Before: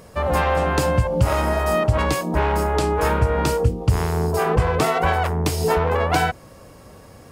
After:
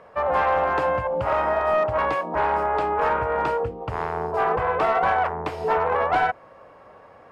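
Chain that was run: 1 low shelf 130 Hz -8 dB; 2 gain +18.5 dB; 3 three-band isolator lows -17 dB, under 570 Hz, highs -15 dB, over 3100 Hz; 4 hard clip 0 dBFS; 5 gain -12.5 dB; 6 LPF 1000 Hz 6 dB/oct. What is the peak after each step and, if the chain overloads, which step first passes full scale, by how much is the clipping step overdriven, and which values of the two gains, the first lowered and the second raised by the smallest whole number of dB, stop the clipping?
-7.0, +11.5, +7.5, 0.0, -12.5, -13.0 dBFS; step 2, 7.5 dB; step 2 +10.5 dB, step 5 -4.5 dB

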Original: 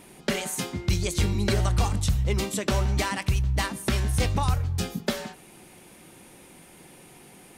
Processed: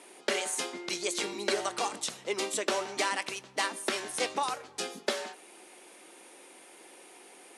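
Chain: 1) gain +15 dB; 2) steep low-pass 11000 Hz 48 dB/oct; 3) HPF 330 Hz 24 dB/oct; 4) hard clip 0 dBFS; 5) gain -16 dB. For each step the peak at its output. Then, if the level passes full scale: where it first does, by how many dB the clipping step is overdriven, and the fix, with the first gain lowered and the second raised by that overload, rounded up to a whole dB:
+1.0, +1.5, +4.5, 0.0, -16.0 dBFS; step 1, 4.5 dB; step 1 +10 dB, step 5 -11 dB

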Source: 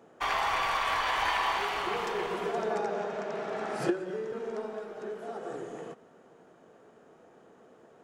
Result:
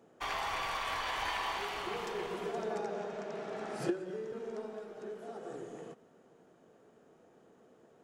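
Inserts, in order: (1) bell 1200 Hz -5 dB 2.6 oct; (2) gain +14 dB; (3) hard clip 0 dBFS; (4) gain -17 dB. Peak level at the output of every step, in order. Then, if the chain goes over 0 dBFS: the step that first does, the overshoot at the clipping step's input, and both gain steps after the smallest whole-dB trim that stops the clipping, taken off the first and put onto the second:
-17.0, -3.0, -3.0, -20.0 dBFS; no overload

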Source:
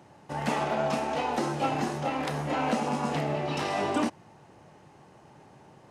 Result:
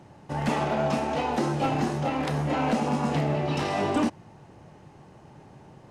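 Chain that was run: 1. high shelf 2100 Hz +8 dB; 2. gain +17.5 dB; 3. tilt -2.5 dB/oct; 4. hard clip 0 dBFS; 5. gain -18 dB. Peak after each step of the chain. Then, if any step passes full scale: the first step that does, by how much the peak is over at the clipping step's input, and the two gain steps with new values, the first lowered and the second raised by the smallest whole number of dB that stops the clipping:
-12.5, +5.0, +7.5, 0.0, -18.0 dBFS; step 2, 7.5 dB; step 2 +9.5 dB, step 5 -10 dB

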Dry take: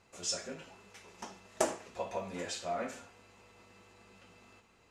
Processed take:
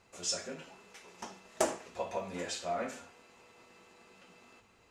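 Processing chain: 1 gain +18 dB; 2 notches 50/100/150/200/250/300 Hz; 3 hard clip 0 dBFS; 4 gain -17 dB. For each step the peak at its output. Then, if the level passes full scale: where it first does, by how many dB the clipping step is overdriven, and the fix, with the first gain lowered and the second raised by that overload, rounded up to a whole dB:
+5.0, +5.0, 0.0, -17.0 dBFS; step 1, 5.0 dB; step 1 +13 dB, step 4 -12 dB

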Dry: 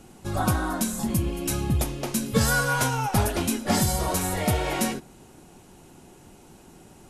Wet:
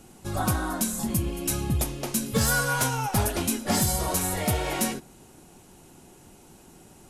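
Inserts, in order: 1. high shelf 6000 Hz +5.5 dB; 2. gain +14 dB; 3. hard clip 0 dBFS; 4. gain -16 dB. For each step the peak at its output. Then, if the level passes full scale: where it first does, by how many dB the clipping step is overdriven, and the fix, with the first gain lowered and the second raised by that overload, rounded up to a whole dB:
-9.0, +5.0, 0.0, -16.0 dBFS; step 2, 5.0 dB; step 2 +9 dB, step 4 -11 dB

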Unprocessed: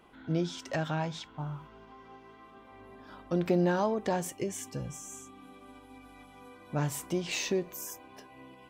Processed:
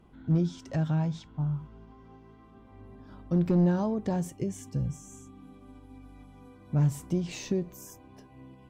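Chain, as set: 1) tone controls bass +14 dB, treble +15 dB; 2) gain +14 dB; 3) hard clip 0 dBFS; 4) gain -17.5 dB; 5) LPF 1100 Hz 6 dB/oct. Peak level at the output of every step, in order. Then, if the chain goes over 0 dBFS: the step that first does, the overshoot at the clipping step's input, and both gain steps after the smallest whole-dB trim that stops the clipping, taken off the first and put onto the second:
-9.5, +4.5, 0.0, -17.5, -17.5 dBFS; step 2, 4.5 dB; step 2 +9 dB, step 4 -12.5 dB

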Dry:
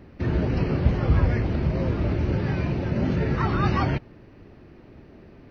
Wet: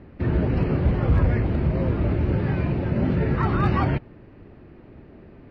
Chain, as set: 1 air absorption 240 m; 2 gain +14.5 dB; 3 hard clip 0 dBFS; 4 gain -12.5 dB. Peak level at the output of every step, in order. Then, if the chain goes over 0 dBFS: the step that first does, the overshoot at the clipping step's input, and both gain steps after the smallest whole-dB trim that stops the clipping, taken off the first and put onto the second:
-6.0, +8.5, 0.0, -12.5 dBFS; step 2, 8.5 dB; step 2 +5.5 dB, step 4 -3.5 dB

